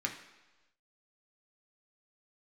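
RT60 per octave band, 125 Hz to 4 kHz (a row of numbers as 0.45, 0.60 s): 1.0, 1.0, 1.1, 1.1, 1.1, 1.2 s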